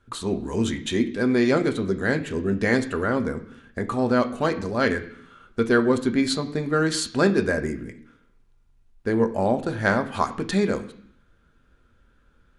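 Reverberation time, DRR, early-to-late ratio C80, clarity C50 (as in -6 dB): 0.65 s, 5.0 dB, 16.5 dB, 13.5 dB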